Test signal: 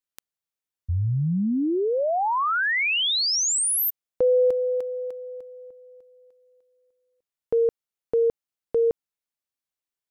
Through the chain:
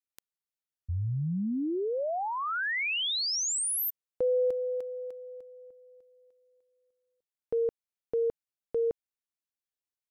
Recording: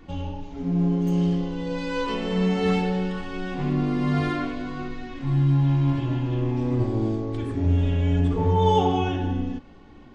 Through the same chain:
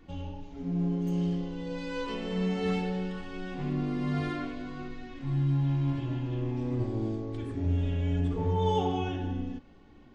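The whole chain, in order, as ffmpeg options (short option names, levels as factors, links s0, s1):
-af "equalizer=f=1000:t=o:w=0.77:g=-2.5,volume=0.447"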